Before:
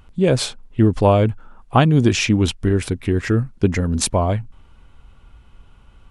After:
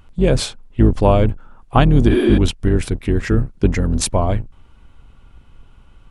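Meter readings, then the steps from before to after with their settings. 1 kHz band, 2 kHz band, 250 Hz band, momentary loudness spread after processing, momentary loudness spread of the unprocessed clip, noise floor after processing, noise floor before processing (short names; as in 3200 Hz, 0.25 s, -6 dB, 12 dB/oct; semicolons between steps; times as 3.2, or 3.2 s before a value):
0.0 dB, -1.5 dB, +1.0 dB, 8 LU, 7 LU, -47 dBFS, -50 dBFS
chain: octaver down 2 oct, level 0 dB; spectral repair 2.13–2.35, 230–9800 Hz before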